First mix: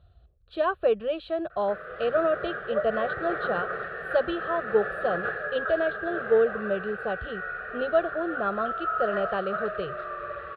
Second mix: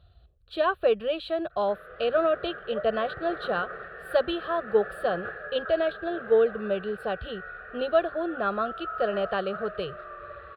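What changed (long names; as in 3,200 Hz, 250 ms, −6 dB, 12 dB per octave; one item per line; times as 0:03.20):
speech: remove low-pass filter 1,900 Hz 6 dB per octave
background −6.5 dB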